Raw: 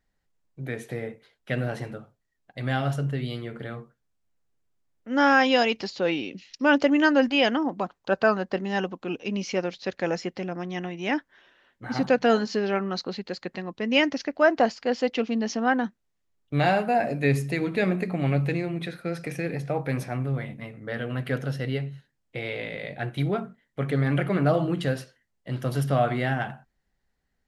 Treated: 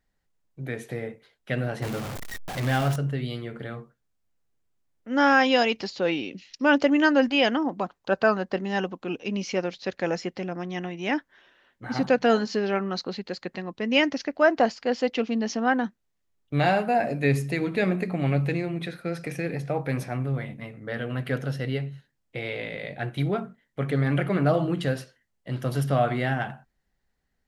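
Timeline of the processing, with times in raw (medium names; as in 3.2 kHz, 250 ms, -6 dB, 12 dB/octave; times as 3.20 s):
1.82–2.96 s: jump at every zero crossing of -28 dBFS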